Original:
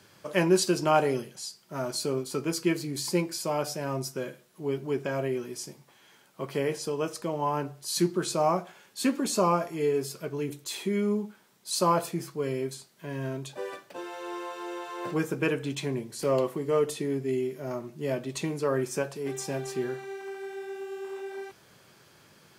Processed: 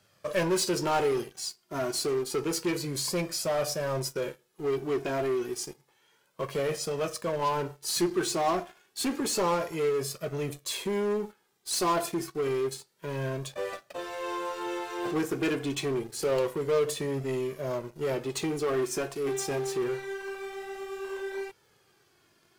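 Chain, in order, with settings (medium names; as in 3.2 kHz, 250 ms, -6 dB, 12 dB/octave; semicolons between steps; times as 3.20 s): waveshaping leveller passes 2; flange 0.29 Hz, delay 1.5 ms, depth 1.4 ms, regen +24%; in parallel at -5 dB: wavefolder -27 dBFS; on the sum: trim -4.5 dB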